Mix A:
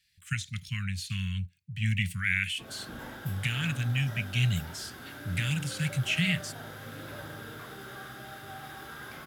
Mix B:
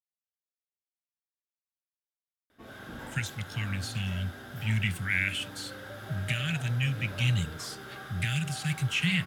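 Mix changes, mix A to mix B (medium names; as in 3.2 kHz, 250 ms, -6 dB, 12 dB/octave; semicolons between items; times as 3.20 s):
speech: entry +2.85 s; background: add treble shelf 11 kHz -8 dB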